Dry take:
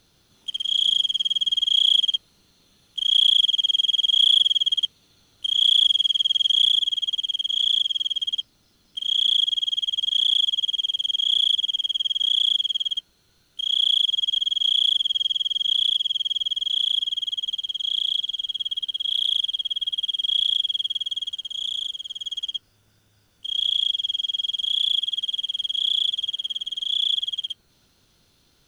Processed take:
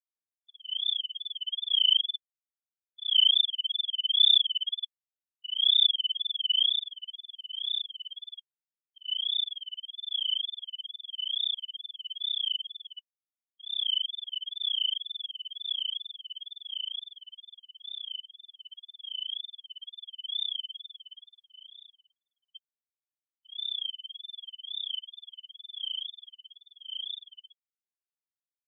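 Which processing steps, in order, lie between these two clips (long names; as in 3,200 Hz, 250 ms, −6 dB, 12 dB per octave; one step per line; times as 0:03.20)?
tape wow and flutter 140 cents
0:22.11–0:22.53: high shelf with overshoot 2,100 Hz −11 dB, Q 1.5
every bin expanded away from the loudest bin 2.5 to 1
level −2 dB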